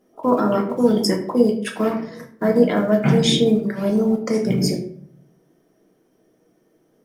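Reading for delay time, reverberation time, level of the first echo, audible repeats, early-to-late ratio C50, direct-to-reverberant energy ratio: no echo audible, 0.60 s, no echo audible, no echo audible, 9.0 dB, 1.0 dB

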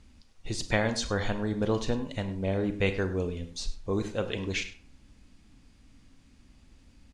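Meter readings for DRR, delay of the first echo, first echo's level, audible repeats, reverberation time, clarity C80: 8.5 dB, 101 ms, −16.5 dB, 1, 0.45 s, 13.5 dB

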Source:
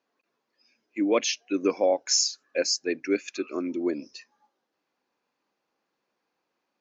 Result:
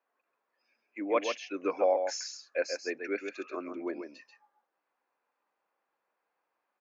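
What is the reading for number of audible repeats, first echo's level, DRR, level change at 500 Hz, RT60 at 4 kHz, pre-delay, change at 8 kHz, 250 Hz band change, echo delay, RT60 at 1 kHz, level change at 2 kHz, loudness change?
1, −6.5 dB, no reverb audible, −4.0 dB, no reverb audible, no reverb audible, can't be measured, −10.0 dB, 136 ms, no reverb audible, −3.0 dB, −7.0 dB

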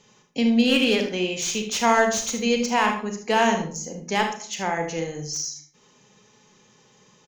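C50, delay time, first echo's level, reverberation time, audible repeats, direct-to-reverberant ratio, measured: 6.5 dB, 76 ms, −11.0 dB, 0.50 s, 1, 4.0 dB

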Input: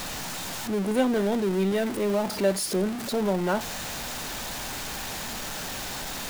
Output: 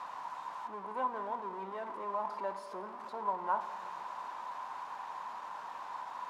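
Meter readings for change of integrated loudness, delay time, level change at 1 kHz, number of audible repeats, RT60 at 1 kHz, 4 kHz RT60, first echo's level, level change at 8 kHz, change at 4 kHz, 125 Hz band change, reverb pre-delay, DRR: −12.0 dB, no echo audible, −0.5 dB, no echo audible, 2.6 s, 1.7 s, no echo audible, below −30 dB, −24.5 dB, below −25 dB, 4 ms, 10.5 dB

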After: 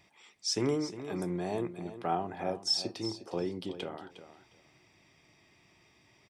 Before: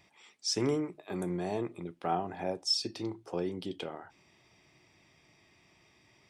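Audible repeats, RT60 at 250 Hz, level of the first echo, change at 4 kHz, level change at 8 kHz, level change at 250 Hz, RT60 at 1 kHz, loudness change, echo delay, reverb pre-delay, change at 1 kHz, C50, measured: 2, no reverb audible, −12.5 dB, 0.0 dB, 0.0 dB, 0.0 dB, no reverb audible, 0.0 dB, 358 ms, no reverb audible, +0.5 dB, no reverb audible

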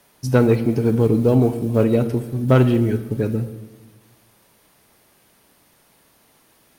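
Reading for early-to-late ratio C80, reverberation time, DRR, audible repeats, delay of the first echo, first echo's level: 14.0 dB, 1.3 s, 10.5 dB, no echo audible, no echo audible, no echo audible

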